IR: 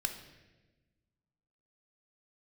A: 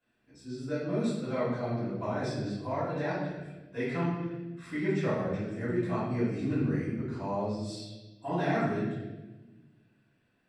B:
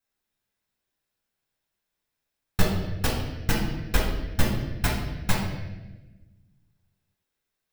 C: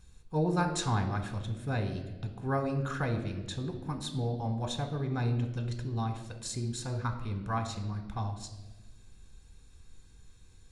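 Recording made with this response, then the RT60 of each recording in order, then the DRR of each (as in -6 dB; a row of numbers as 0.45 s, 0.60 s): C; 1.2 s, 1.2 s, 1.2 s; -12.5 dB, -2.5 dB, 5.5 dB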